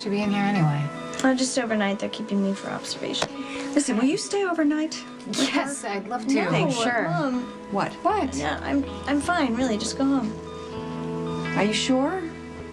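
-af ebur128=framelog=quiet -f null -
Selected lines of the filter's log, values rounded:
Integrated loudness:
  I:         -25.0 LUFS
  Threshold: -35.1 LUFS
Loudness range:
  LRA:         1.3 LU
  Threshold: -45.2 LUFS
  LRA low:   -25.8 LUFS
  LRA high:  -24.5 LUFS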